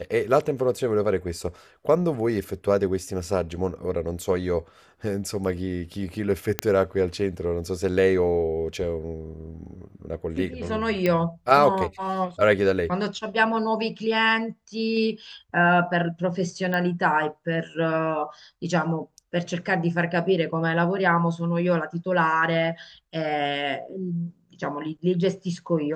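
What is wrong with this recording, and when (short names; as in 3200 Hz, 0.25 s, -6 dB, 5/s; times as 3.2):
6.59 pop -5 dBFS
9.66 gap 2.6 ms
11.06 pop -11 dBFS
16.74 pop -14 dBFS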